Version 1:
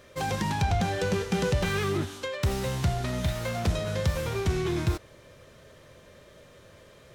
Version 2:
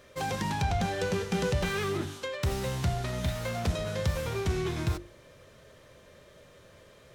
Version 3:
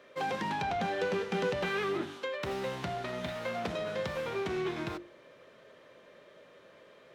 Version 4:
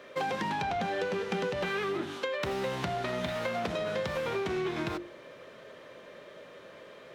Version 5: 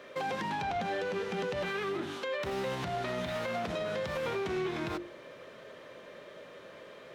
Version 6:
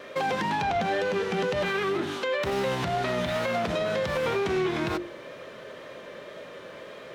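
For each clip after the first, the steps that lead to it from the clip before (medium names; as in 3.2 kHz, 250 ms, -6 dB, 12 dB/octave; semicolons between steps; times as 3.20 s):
hum notches 50/100/150/200/250/300/350 Hz; trim -2 dB
three-band isolator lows -23 dB, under 190 Hz, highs -14 dB, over 3.9 kHz
compression, threshold -36 dBFS, peak gain reduction 9 dB; trim +7 dB
peak limiter -26 dBFS, peak gain reduction 7 dB
wow and flutter 29 cents; trim +7 dB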